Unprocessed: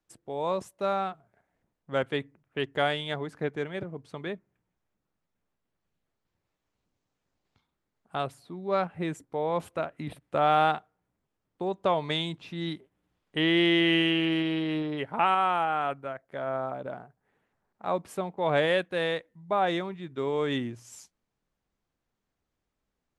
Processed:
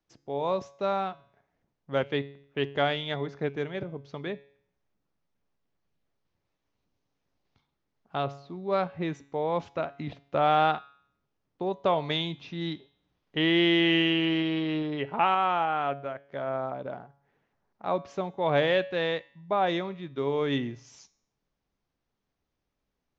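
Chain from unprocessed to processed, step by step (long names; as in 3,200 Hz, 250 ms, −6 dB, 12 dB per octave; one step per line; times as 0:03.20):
Butterworth low-pass 6,500 Hz 72 dB per octave
parametric band 1,500 Hz −2 dB
tuned comb filter 140 Hz, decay 0.61 s, harmonics all, mix 50%
level +6 dB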